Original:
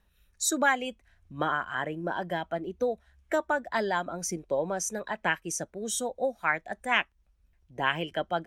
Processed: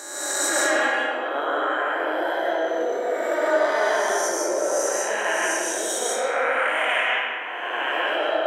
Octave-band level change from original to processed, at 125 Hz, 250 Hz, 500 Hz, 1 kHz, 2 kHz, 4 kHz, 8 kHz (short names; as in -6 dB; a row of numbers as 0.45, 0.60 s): under -20 dB, +2.5 dB, +9.0 dB, +6.5 dB, +7.5 dB, +8.5 dB, +8.0 dB